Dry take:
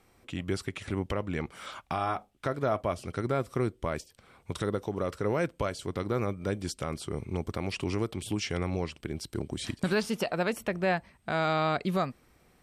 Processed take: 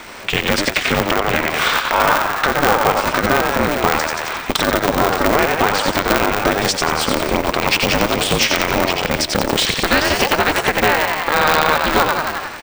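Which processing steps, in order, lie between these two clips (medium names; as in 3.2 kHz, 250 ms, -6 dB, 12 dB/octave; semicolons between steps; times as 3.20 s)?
high-pass 350 Hz 6 dB/octave; bass shelf 500 Hz -10 dB; frequency-shifting echo 89 ms, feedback 49%, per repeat +68 Hz, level -5.5 dB; compression 4:1, threshold -48 dBFS, peak gain reduction 19 dB; distance through air 77 m; loudness maximiser +35.5 dB; polarity switched at an audio rate 150 Hz; trim -1 dB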